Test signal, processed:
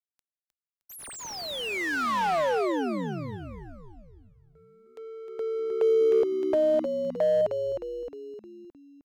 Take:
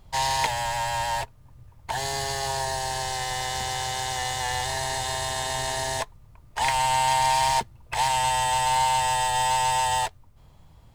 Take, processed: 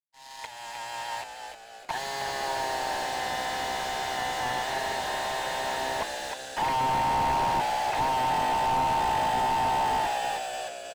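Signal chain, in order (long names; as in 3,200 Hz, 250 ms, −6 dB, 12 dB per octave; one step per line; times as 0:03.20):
fade in at the beginning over 2.64 s
meter weighting curve A
leveller curve on the samples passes 1
in parallel at −1.5 dB: downward compressor, threshold −34 dBFS
on the sum: power curve on the samples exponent 1.4
on a send: echo with shifted repeats 309 ms, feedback 52%, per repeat −67 Hz, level −7 dB
on the sum: slew-rate limiting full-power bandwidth 66 Hz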